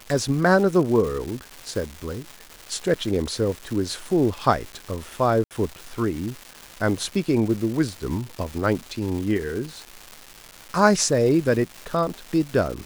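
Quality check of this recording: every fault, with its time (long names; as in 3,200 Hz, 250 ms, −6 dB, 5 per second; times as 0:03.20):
surface crackle 540 per second −30 dBFS
0:05.44–0:05.51: drop-out 68 ms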